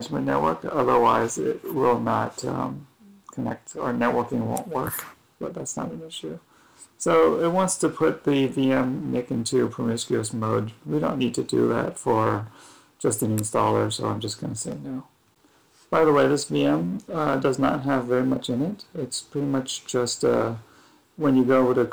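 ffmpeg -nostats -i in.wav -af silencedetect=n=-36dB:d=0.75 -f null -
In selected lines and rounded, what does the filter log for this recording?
silence_start: 15.00
silence_end: 15.92 | silence_duration: 0.92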